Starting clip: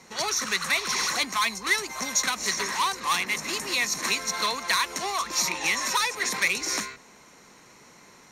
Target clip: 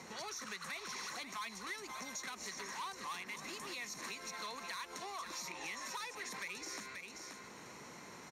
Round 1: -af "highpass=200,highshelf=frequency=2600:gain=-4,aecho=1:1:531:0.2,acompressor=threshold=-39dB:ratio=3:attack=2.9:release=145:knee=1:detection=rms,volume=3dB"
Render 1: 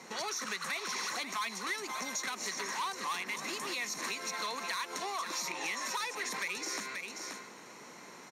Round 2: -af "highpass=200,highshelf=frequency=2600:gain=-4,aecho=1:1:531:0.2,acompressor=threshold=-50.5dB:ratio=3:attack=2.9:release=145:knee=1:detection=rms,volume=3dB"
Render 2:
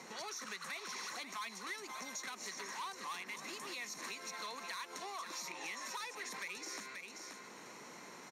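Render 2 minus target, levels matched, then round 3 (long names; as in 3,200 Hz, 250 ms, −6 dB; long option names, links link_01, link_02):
125 Hz band −4.5 dB
-af "highpass=63,highshelf=frequency=2600:gain=-4,aecho=1:1:531:0.2,acompressor=threshold=-50.5dB:ratio=3:attack=2.9:release=145:knee=1:detection=rms,volume=3dB"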